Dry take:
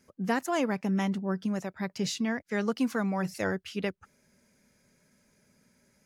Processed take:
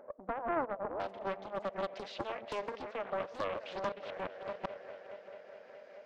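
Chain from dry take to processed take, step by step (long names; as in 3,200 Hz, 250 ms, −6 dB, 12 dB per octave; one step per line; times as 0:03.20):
delay that plays each chunk backwards 388 ms, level −6 dB
low-pass filter 1,100 Hz 24 dB per octave, from 0:01.00 3,800 Hz
echo machine with several playback heads 212 ms, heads first and third, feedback 60%, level −22 dB
downward compressor 12 to 1, threshold −40 dBFS, peak gain reduction 18 dB
high-pass with resonance 590 Hz, resonance Q 4.9
upward compression, threshold −50 dBFS
convolution reverb, pre-delay 3 ms, DRR 17.5 dB
highs frequency-modulated by the lows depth 0.72 ms
level +3 dB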